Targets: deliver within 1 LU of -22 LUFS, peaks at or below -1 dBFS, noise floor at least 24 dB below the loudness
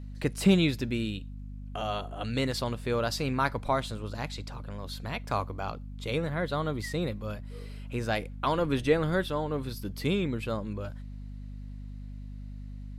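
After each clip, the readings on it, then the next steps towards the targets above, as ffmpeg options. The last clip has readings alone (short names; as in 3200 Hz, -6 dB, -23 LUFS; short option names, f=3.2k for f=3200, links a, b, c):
hum 50 Hz; harmonics up to 250 Hz; hum level -38 dBFS; loudness -31.0 LUFS; peak -11.5 dBFS; loudness target -22.0 LUFS
-> -af "bandreject=f=50:t=h:w=6,bandreject=f=100:t=h:w=6,bandreject=f=150:t=h:w=6,bandreject=f=200:t=h:w=6,bandreject=f=250:t=h:w=6"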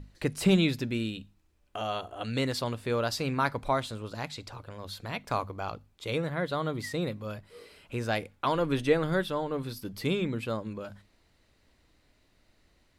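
hum none; loudness -31.0 LUFS; peak -12.0 dBFS; loudness target -22.0 LUFS
-> -af "volume=9dB"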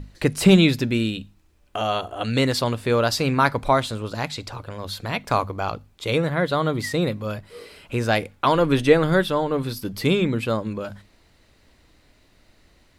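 loudness -22.0 LUFS; peak -3.0 dBFS; noise floor -59 dBFS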